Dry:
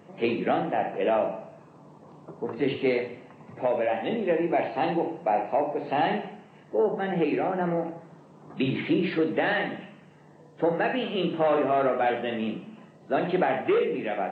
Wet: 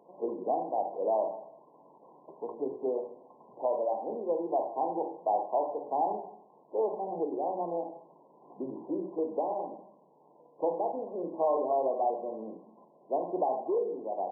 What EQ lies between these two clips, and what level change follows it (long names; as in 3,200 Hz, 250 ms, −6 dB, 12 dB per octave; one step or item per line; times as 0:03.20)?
high-pass filter 440 Hz 12 dB per octave
linear-phase brick-wall low-pass 1,100 Hz
−3.0 dB